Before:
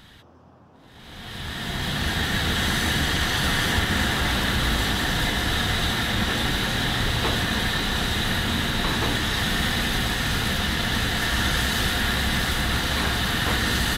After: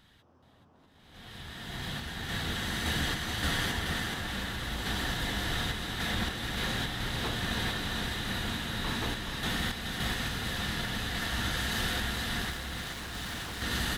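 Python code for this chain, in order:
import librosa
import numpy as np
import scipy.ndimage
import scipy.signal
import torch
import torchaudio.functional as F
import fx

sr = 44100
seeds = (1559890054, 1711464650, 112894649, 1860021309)

p1 = fx.overload_stage(x, sr, gain_db=27.5, at=(12.5, 13.62))
p2 = fx.tremolo_random(p1, sr, seeds[0], hz=3.5, depth_pct=55)
p3 = p2 + fx.echo_single(p2, sr, ms=426, db=-5.5, dry=0)
y = p3 * 10.0 ** (-8.0 / 20.0)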